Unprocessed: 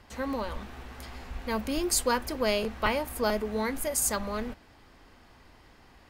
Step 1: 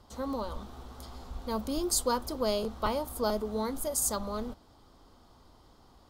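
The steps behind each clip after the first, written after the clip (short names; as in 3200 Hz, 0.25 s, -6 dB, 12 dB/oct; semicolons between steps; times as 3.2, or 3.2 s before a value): band shelf 2100 Hz -13 dB 1 oct; gain -2 dB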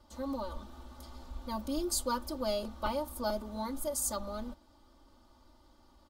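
comb 3.4 ms, depth 96%; gain -7 dB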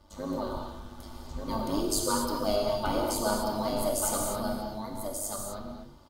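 AM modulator 100 Hz, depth 60%; on a send: echo 1.186 s -5 dB; on the sum: non-linear reverb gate 0.28 s flat, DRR -0.5 dB; gain +5 dB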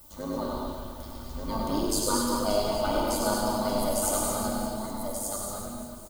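on a send: reverse bouncing-ball echo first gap 0.1 s, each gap 1.25×, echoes 5; on the sum: added noise violet -53 dBFS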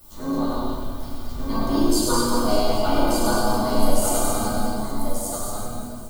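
shoebox room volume 270 m³, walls furnished, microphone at 3.2 m; gain -1 dB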